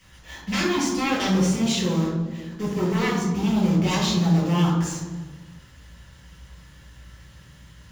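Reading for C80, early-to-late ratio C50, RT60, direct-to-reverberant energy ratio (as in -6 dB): 5.5 dB, 2.5 dB, 1.4 s, -4.5 dB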